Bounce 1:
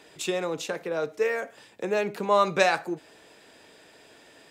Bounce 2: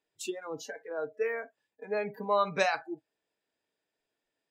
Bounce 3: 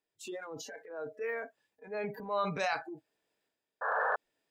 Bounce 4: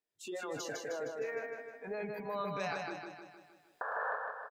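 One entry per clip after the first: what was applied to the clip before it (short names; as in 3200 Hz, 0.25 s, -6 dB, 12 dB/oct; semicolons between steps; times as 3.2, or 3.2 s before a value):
spectral noise reduction 27 dB; gain -5.5 dB
painted sound noise, 3.81–4.16, 420–1800 Hz -26 dBFS; transient shaper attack -5 dB, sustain +8 dB; gain -4.5 dB
recorder AGC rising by 20 dB/s; on a send: feedback echo 0.155 s, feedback 54%, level -4 dB; on the sum: gain -6.5 dB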